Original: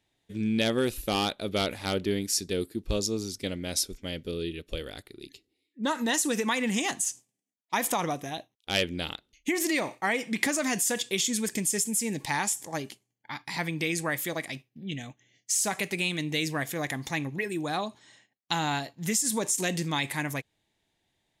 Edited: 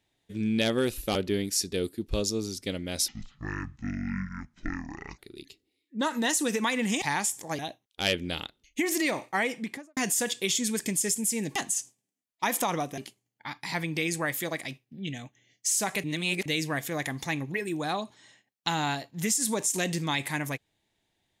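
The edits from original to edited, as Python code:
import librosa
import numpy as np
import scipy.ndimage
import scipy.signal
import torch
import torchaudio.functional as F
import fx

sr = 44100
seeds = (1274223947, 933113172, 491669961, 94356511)

y = fx.studio_fade_out(x, sr, start_s=10.12, length_s=0.54)
y = fx.edit(y, sr, fx.cut(start_s=1.15, length_s=0.77),
    fx.speed_span(start_s=3.85, length_s=1.18, speed=0.56),
    fx.swap(start_s=6.86, length_s=1.42, other_s=12.25, other_length_s=0.57),
    fx.reverse_span(start_s=15.88, length_s=0.42), tone=tone)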